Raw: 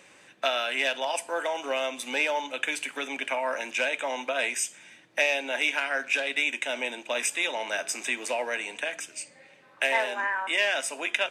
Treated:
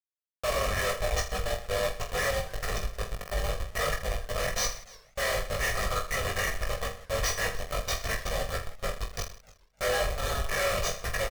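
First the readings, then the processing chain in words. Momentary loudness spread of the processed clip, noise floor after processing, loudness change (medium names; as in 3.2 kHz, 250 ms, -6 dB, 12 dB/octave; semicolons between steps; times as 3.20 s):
7 LU, -65 dBFS, -3.0 dB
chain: frequency axis rescaled in octaves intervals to 90%; treble shelf 5.7 kHz +11.5 dB; Schmitt trigger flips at -26 dBFS; Chebyshev shaper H 5 -13 dB, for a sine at -24.5 dBFS; peaking EQ 160 Hz -9.5 dB 2.5 oct; comb 1.7 ms, depth 80%; reverse bouncing-ball echo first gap 20 ms, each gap 1.3×, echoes 5; modulated delay 298 ms, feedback 32%, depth 157 cents, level -21.5 dB; trim -1 dB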